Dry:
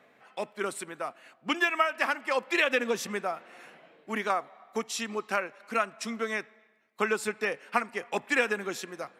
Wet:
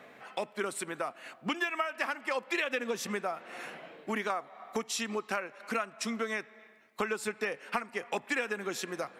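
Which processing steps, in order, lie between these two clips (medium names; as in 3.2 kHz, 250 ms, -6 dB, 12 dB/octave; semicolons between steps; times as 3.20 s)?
compression 3:1, threshold -41 dBFS, peak gain reduction 16 dB; trim +7.5 dB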